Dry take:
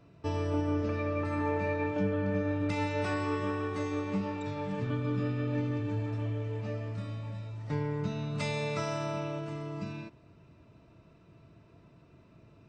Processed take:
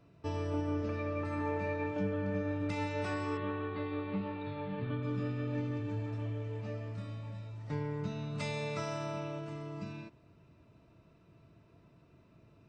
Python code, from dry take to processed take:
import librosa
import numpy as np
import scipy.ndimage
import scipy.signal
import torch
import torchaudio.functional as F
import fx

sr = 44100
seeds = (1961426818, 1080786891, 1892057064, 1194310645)

y = fx.steep_lowpass(x, sr, hz=4300.0, slope=72, at=(3.37, 5.03))
y = y * librosa.db_to_amplitude(-4.0)